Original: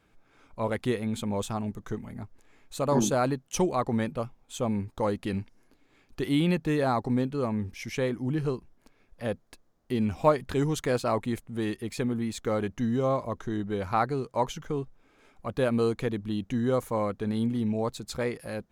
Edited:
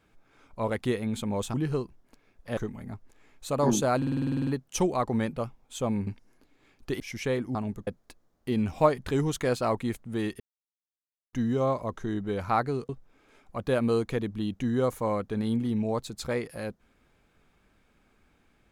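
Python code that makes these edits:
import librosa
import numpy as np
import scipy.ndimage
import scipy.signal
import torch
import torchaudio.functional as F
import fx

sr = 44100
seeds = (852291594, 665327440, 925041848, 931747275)

y = fx.edit(x, sr, fx.swap(start_s=1.54, length_s=0.32, other_s=8.27, other_length_s=1.03),
    fx.stutter(start_s=3.26, slice_s=0.05, count=11),
    fx.cut(start_s=4.86, length_s=0.51),
    fx.cut(start_s=6.3, length_s=1.42),
    fx.silence(start_s=11.83, length_s=0.93),
    fx.cut(start_s=14.32, length_s=0.47), tone=tone)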